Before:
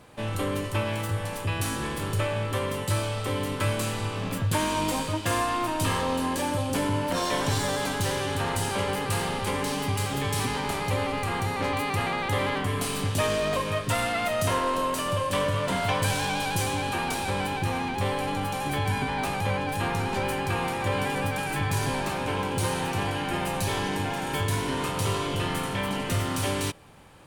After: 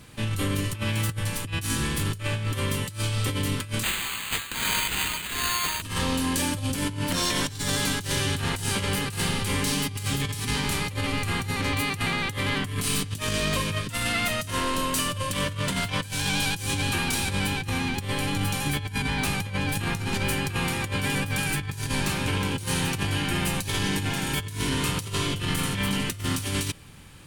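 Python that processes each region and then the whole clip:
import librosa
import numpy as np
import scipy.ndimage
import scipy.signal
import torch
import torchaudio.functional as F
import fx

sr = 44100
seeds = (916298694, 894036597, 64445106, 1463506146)

y = fx.chain(x, sr, fx.highpass(hz=830.0, slope=24),
    fx.peak_eq(hz=15000.0, db=12.5, octaves=1.5),
    fx.resample_bad(factor=8, down='none', up='hold'), at=(3.83, 5.82))
y = fx.peak_eq(y, sr, hz=680.0, db=-14.5, octaves=2.1)
y = fx.over_compress(y, sr, threshold_db=-33.0, ratio=-0.5)
y = y * 10.0 ** (6.5 / 20.0)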